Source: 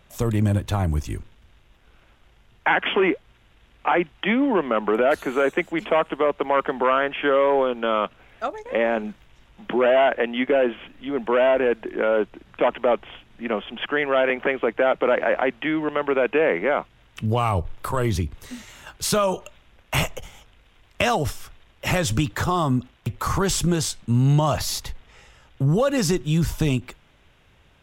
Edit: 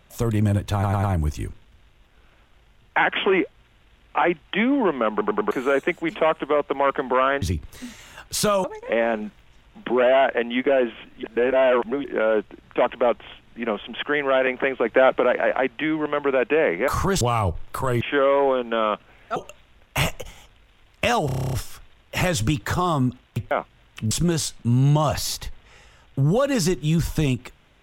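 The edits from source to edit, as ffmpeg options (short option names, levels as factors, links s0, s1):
-filter_complex "[0:a]asplit=29[s0][s1][s2][s3][s4][s5][s6][s7][s8][s9][s10][s11][s12][s13][s14][s15][s16][s17][s18][s19][s20][s21][s22][s23][s24][s25][s26][s27][s28];[s0]atrim=end=0.832[s29];[s1]atrim=start=0.728:end=0.832[s30];[s2]atrim=start=0.728:end=0.832[s31];[s3]atrim=start=0.728:end=4.912[s32];[s4]atrim=start=4.808:end=4.912[s33];[s5]atrim=start=4.808:end=4.912[s34];[s6]atrim=start=4.808:end=4.912[s35];[s7]atrim=start=5.208:end=7.122[s36];[s8]atrim=start=18.108:end=19.332[s37];[s9]atrim=start=8.468:end=11.062[s38];[s10]atrim=start=11.058:end=11.872,asetpts=PTS-STARTPTS,areverse[s39];[s11]atrim=start=11.868:end=14.692[s40];[s12]atrim=start=14.688:end=15.032,asetpts=PTS-STARTPTS,volume=1.5[s41];[s13]atrim=start=15.028:end=16.712[s42];[s14]atrim=start=23.208:end=23.542[s43];[s15]atrim=start=17.308:end=18.112[s44];[s16]atrim=start=7.118:end=8.472[s45];[s17]atrim=start=19.328:end=21.262[s46];[s18]atrim=start=21.228:end=21.262[s47];[s19]atrim=start=21.228:end=21.262[s48];[s20]atrim=start=21.228:end=21.262[s49];[s21]atrim=start=21.228:end=21.262[s50];[s22]atrim=start=21.228:end=21.262[s51];[s23]atrim=start=21.228:end=21.262[s52];[s24]atrim=start=21.228:end=21.262[s53];[s25]atrim=start=21.228:end=21.262[s54];[s26]atrim=start=21.228:end=23.212[s55];[s27]atrim=start=16.708:end=17.312[s56];[s28]atrim=start=23.538[s57];[s29][s30]acrossfade=d=0.004:c1=hsin:c2=hsin[s58];[s58][s31]acrossfade=d=0.004:c1=hsin:c2=hsin[s59];[s59][s32]acrossfade=d=0.004:c1=hsin:c2=hsin[s60];[s60][s33]acrossfade=d=0.004:c1=hsin:c2=hsin[s61];[s61][s34]acrossfade=d=0.004:c1=hsin:c2=hsin[s62];[s62][s35]acrossfade=d=0.004:c1=hsin:c2=hsin[s63];[s63][s36]acrossfade=d=0.004:c1=hsin:c2=hsin[s64];[s64][s37]acrossfade=d=0.004:c1=hsin:c2=hsin[s65];[s65][s38]acrossfade=d=0.004:c1=hsin:c2=hsin[s66];[s66][s39]acrossfade=d=0.004:c1=hsin:c2=hsin[s67];[s67][s40]acrossfade=d=0.004:c1=hsin:c2=hsin[s68];[s68][s41]acrossfade=d=0.004:c1=hsin:c2=hsin[s69];[s69][s42]acrossfade=d=0.004:c1=hsin:c2=hsin[s70];[s70][s43]acrossfade=d=0.004:c1=hsin:c2=hsin[s71];[s71][s44]acrossfade=d=0.004:c1=hsin:c2=hsin[s72];[s72][s45]acrossfade=d=0.004:c1=hsin:c2=hsin[s73];[s73][s46]acrossfade=d=0.004:c1=hsin:c2=hsin[s74];[s74][s47]acrossfade=d=0.004:c1=hsin:c2=hsin[s75];[s75][s48]acrossfade=d=0.004:c1=hsin:c2=hsin[s76];[s76][s49]acrossfade=d=0.004:c1=hsin:c2=hsin[s77];[s77][s50]acrossfade=d=0.004:c1=hsin:c2=hsin[s78];[s78][s51]acrossfade=d=0.004:c1=hsin:c2=hsin[s79];[s79][s52]acrossfade=d=0.004:c1=hsin:c2=hsin[s80];[s80][s53]acrossfade=d=0.004:c1=hsin:c2=hsin[s81];[s81][s54]acrossfade=d=0.004:c1=hsin:c2=hsin[s82];[s82][s55]acrossfade=d=0.004:c1=hsin:c2=hsin[s83];[s83][s56]acrossfade=d=0.004:c1=hsin:c2=hsin[s84];[s84][s57]acrossfade=d=0.004:c1=hsin:c2=hsin"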